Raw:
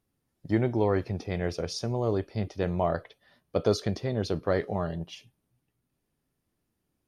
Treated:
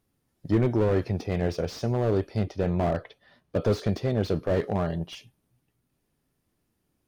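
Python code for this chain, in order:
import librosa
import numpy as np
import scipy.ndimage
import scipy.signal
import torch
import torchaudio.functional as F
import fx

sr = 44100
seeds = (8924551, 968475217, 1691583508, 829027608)

y = fx.high_shelf(x, sr, hz=8100.0, db=-11.5, at=(2.45, 3.62))
y = fx.slew_limit(y, sr, full_power_hz=30.0)
y = F.gain(torch.from_numpy(y), 4.0).numpy()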